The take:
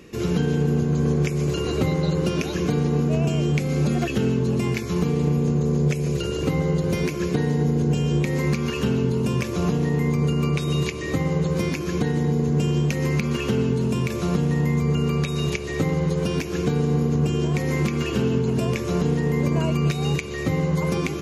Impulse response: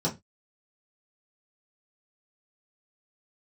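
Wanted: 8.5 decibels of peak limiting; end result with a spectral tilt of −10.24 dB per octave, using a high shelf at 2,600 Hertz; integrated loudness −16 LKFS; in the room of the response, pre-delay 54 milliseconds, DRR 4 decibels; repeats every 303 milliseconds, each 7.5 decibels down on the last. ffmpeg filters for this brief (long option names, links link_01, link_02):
-filter_complex "[0:a]highshelf=frequency=2600:gain=-8.5,alimiter=limit=-18.5dB:level=0:latency=1,aecho=1:1:303|606|909|1212|1515:0.422|0.177|0.0744|0.0312|0.0131,asplit=2[link_01][link_02];[1:a]atrim=start_sample=2205,adelay=54[link_03];[link_02][link_03]afir=irnorm=-1:irlink=0,volume=-12.5dB[link_04];[link_01][link_04]amix=inputs=2:normalize=0,volume=3.5dB"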